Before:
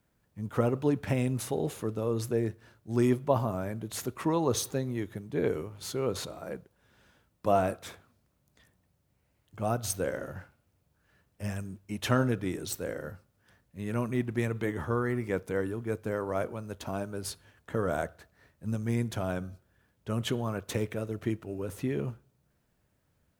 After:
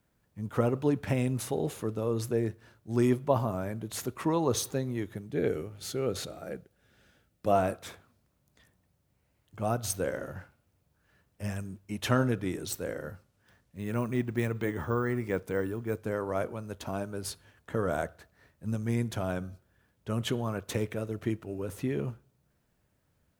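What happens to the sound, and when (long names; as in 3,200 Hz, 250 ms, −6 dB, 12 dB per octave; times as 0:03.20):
0:05.26–0:07.51: parametric band 1,000 Hz −14.5 dB 0.24 octaves
0:13.12–0:16.02: bad sample-rate conversion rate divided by 2×, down none, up hold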